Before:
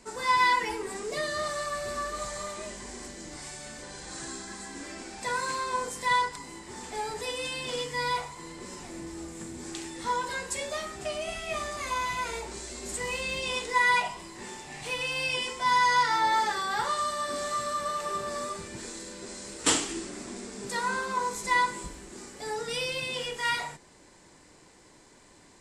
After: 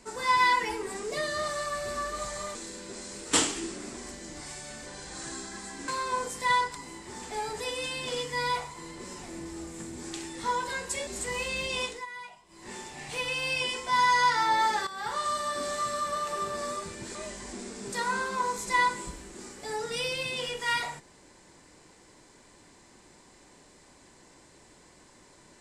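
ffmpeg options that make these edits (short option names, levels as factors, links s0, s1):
-filter_complex "[0:a]asplit=10[s0][s1][s2][s3][s4][s5][s6][s7][s8][s9];[s0]atrim=end=2.552[s10];[s1]atrim=start=18.878:end=20.302[s11];[s2]atrim=start=2.928:end=4.842[s12];[s3]atrim=start=5.488:end=10.682[s13];[s4]atrim=start=12.798:end=13.79,asetpts=PTS-STARTPTS,afade=t=out:st=0.752:d=0.24:silence=0.112202[s14];[s5]atrim=start=13.79:end=14.21,asetpts=PTS-STARTPTS,volume=0.112[s15];[s6]atrim=start=14.21:end=16.6,asetpts=PTS-STARTPTS,afade=t=in:d=0.24:silence=0.112202,afade=t=out:st=2.386:d=0.004:c=hsin:silence=0.251189[s16];[s7]atrim=start=16.6:end=18.882,asetpts=PTS-STARTPTS,afade=t=in:d=0.45:silence=0.251189[s17];[s8]atrim=start=2.548:end=2.932[s18];[s9]atrim=start=20.298[s19];[s10][s11]acrossfade=d=0.004:c1=hsin:c2=hsin[s20];[s20][s12]acrossfade=d=0.004:c1=hsin:c2=hsin[s21];[s21][s13]acrossfade=d=0.004:c1=hsin:c2=hsin[s22];[s14][s15][s16][s17]concat=n=4:v=0:a=1[s23];[s22][s23]acrossfade=d=0.004:c1=hsin:c2=hsin[s24];[s24][s18]acrossfade=d=0.004:c1=hsin:c2=hsin[s25];[s25][s19]acrossfade=d=0.004:c1=hsin:c2=hsin"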